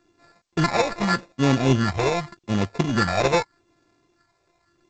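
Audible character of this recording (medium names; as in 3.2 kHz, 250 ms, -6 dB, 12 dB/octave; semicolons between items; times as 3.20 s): a buzz of ramps at a fixed pitch in blocks of 32 samples; phasing stages 4, 0.84 Hz, lowest notch 240–3000 Hz; aliases and images of a low sample rate 3.1 kHz, jitter 0%; G.722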